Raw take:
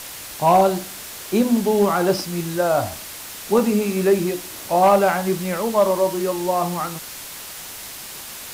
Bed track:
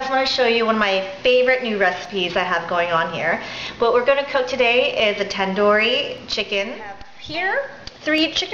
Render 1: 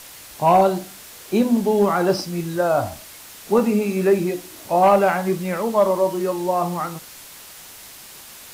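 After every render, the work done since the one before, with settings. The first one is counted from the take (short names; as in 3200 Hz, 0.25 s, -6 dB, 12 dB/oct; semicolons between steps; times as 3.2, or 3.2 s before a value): noise print and reduce 6 dB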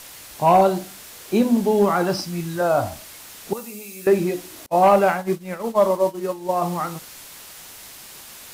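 2.03–2.61 bell 450 Hz -8 dB; 3.53–4.07 pre-emphasis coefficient 0.9; 4.66–6.62 expander -19 dBFS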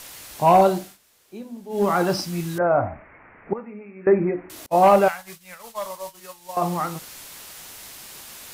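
0.66–2.01 dip -19 dB, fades 0.32 s equal-power; 2.58–4.5 steep low-pass 2300 Hz 72 dB/oct; 5.08–6.57 passive tone stack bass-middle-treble 10-0-10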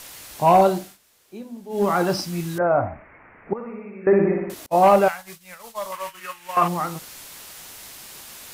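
3.54–4.54 flutter echo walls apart 10.3 m, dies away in 1 s; 5.92–6.68 band shelf 1800 Hz +13 dB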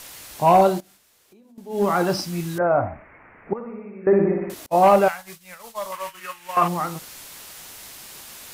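0.8–1.58 compressor 10:1, threshold -49 dBFS; 3.59–4.42 high shelf 2500 Hz -11.5 dB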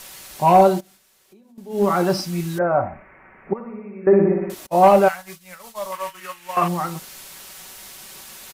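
comb 5.3 ms, depth 43%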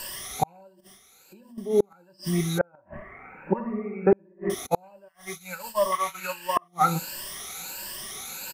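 moving spectral ripple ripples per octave 1.3, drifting +1.4 Hz, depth 16 dB; flipped gate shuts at -9 dBFS, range -41 dB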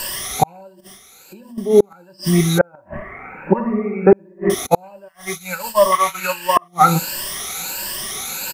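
gain +10.5 dB; limiter -1 dBFS, peak gain reduction 2.5 dB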